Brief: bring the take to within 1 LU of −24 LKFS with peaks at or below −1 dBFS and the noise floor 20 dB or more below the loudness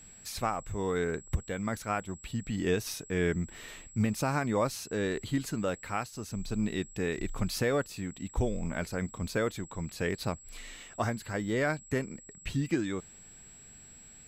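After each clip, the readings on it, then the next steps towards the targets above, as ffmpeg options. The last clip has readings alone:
interfering tone 7,700 Hz; level of the tone −51 dBFS; integrated loudness −33.0 LKFS; sample peak −17.0 dBFS; target loudness −24.0 LKFS
→ -af "bandreject=frequency=7700:width=30"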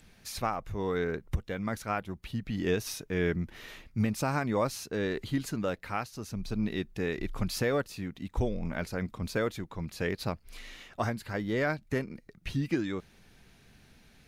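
interfering tone none found; integrated loudness −33.0 LKFS; sample peak −17.0 dBFS; target loudness −24.0 LKFS
→ -af "volume=9dB"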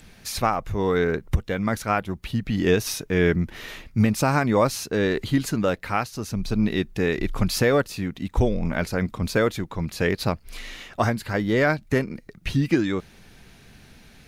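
integrated loudness −24.0 LKFS; sample peak −8.0 dBFS; background noise floor −51 dBFS

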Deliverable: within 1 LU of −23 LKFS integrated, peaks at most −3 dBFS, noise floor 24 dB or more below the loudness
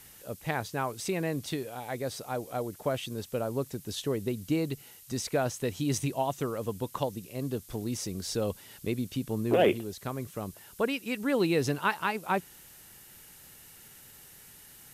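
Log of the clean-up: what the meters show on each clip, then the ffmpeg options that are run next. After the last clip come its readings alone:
background noise floor −53 dBFS; target noise floor −56 dBFS; integrated loudness −32.0 LKFS; sample peak −13.5 dBFS; target loudness −23.0 LKFS
→ -af "afftdn=noise_reduction=6:noise_floor=-53"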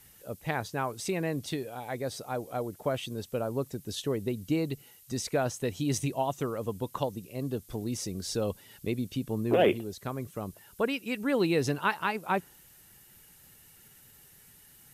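background noise floor −57 dBFS; integrated loudness −32.0 LKFS; sample peak −13.5 dBFS; target loudness −23.0 LKFS
→ -af "volume=9dB"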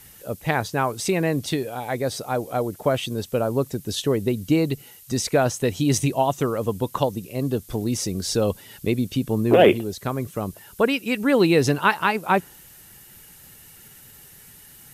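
integrated loudness −23.0 LKFS; sample peak −4.5 dBFS; background noise floor −48 dBFS

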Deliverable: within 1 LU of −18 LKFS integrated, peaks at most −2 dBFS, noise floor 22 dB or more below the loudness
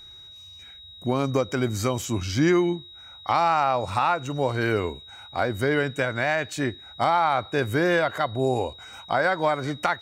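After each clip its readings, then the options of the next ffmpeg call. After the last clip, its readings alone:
interfering tone 3,800 Hz; level of the tone −43 dBFS; integrated loudness −24.5 LKFS; sample peak −7.5 dBFS; target loudness −18.0 LKFS
→ -af "bandreject=frequency=3800:width=30"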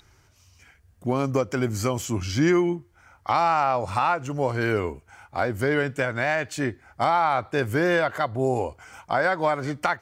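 interfering tone none found; integrated loudness −24.5 LKFS; sample peak −7.5 dBFS; target loudness −18.0 LKFS
→ -af "volume=6.5dB,alimiter=limit=-2dB:level=0:latency=1"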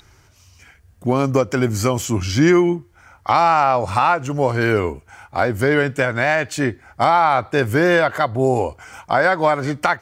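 integrated loudness −18.0 LKFS; sample peak −2.0 dBFS; background noise floor −53 dBFS

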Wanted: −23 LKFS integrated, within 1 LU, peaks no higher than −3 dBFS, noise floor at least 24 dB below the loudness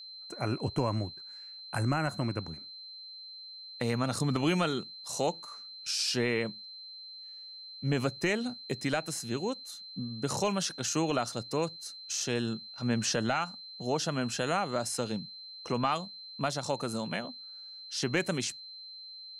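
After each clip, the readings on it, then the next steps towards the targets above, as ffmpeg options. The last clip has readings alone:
interfering tone 4,100 Hz; level of the tone −44 dBFS; integrated loudness −32.5 LKFS; sample peak −17.5 dBFS; target loudness −23.0 LKFS
→ -af "bandreject=frequency=4100:width=30"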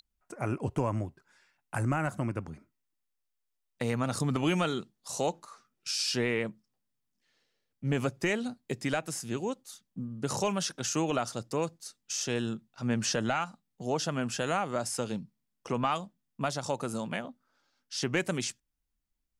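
interfering tone none found; integrated loudness −32.5 LKFS; sample peak −17.5 dBFS; target loudness −23.0 LKFS
→ -af "volume=9.5dB"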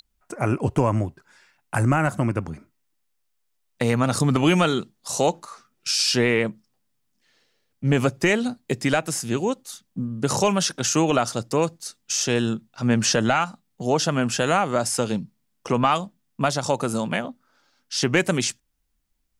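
integrated loudness −23.0 LKFS; sample peak −8.0 dBFS; background noise floor −72 dBFS

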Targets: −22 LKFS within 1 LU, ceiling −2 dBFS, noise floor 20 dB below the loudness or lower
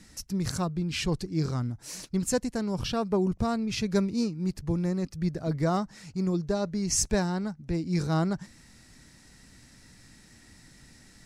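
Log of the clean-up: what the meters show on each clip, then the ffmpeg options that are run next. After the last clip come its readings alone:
integrated loudness −29.5 LKFS; sample peak −13.0 dBFS; target loudness −22.0 LKFS
→ -af "volume=7.5dB"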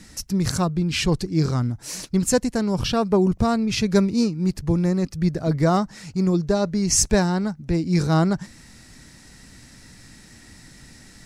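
integrated loudness −22.0 LKFS; sample peak −5.5 dBFS; background noise floor −48 dBFS

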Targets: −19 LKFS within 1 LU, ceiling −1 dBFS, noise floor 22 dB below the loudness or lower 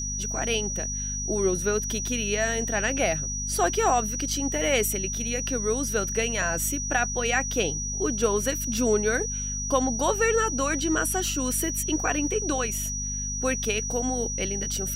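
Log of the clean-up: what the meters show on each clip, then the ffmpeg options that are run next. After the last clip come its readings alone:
mains hum 50 Hz; hum harmonics up to 250 Hz; level of the hum −32 dBFS; interfering tone 5,800 Hz; level of the tone −30 dBFS; integrated loudness −25.5 LKFS; sample peak −10.5 dBFS; target loudness −19.0 LKFS
→ -af "bandreject=frequency=50:width_type=h:width=4,bandreject=frequency=100:width_type=h:width=4,bandreject=frequency=150:width_type=h:width=4,bandreject=frequency=200:width_type=h:width=4,bandreject=frequency=250:width_type=h:width=4"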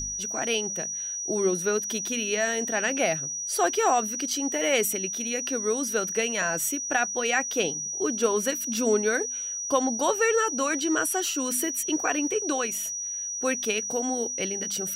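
mains hum none found; interfering tone 5,800 Hz; level of the tone −30 dBFS
→ -af "bandreject=frequency=5800:width=30"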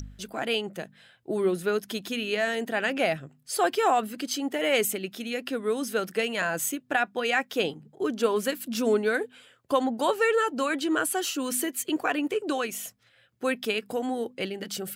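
interfering tone none found; integrated loudness −27.5 LKFS; sample peak −12.0 dBFS; target loudness −19.0 LKFS
→ -af "volume=8.5dB"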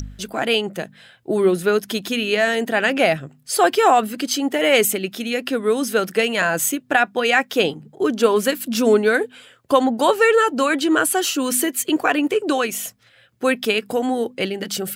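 integrated loudness −19.0 LKFS; sample peak −3.5 dBFS; background noise floor −54 dBFS

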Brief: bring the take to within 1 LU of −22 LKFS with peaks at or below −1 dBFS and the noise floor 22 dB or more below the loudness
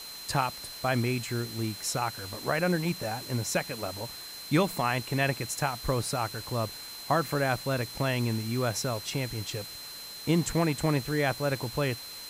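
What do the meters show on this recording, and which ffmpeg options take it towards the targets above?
interfering tone 4,100 Hz; level of the tone −42 dBFS; background noise floor −43 dBFS; target noise floor −52 dBFS; integrated loudness −30.0 LKFS; sample peak −13.5 dBFS; target loudness −22.0 LKFS
→ -af "bandreject=frequency=4100:width=30"
-af "afftdn=noise_reduction=9:noise_floor=-43"
-af "volume=8dB"

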